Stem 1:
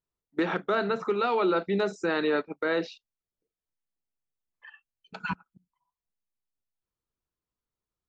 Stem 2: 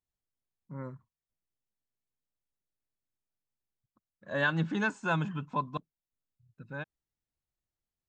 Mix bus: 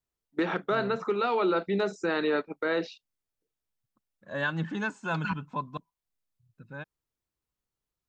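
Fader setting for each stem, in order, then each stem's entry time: -1.0 dB, -1.5 dB; 0.00 s, 0.00 s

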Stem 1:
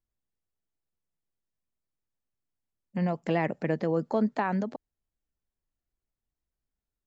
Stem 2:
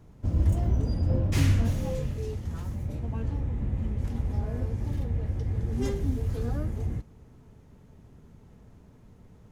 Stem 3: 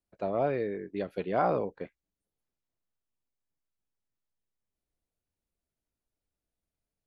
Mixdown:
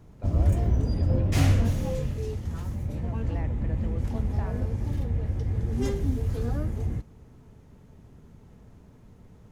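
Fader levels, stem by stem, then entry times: -14.5 dB, +1.5 dB, -11.0 dB; 0.00 s, 0.00 s, 0.00 s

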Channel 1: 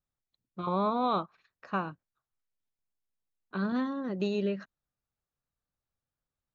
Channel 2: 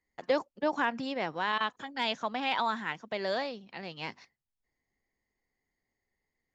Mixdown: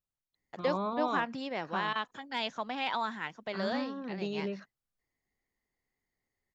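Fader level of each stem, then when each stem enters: -5.5 dB, -3.0 dB; 0.00 s, 0.35 s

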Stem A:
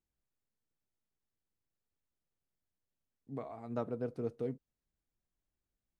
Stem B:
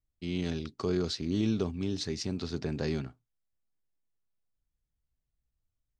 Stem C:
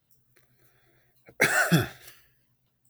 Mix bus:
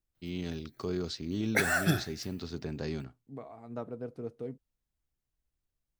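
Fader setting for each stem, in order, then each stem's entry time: -2.0 dB, -4.0 dB, -5.5 dB; 0.00 s, 0.00 s, 0.15 s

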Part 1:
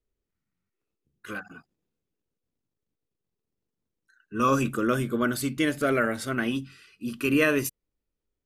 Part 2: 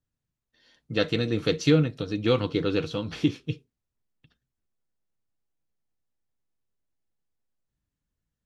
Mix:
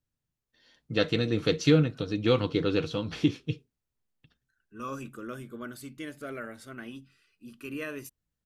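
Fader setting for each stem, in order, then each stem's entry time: -14.5 dB, -1.0 dB; 0.40 s, 0.00 s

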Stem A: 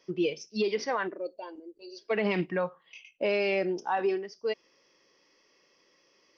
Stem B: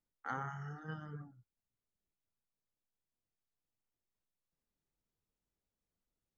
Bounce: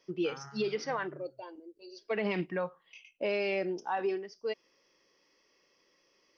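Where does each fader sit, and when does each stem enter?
-4.0 dB, -6.5 dB; 0.00 s, 0.00 s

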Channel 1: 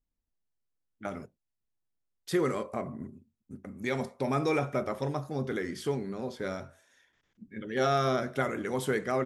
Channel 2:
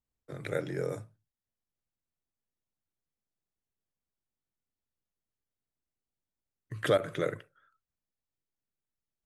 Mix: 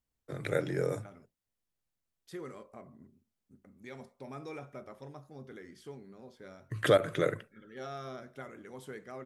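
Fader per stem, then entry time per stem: -15.5 dB, +2.0 dB; 0.00 s, 0.00 s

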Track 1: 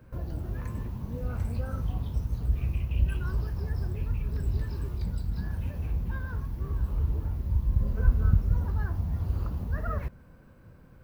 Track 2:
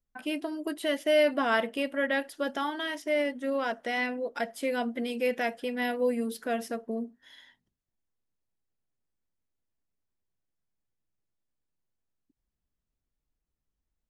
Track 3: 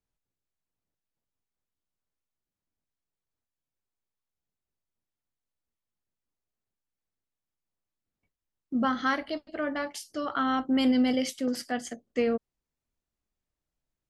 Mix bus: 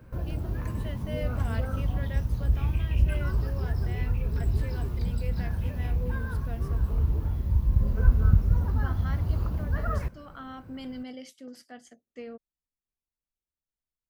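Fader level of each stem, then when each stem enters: +2.5 dB, -14.5 dB, -15.0 dB; 0.00 s, 0.00 s, 0.00 s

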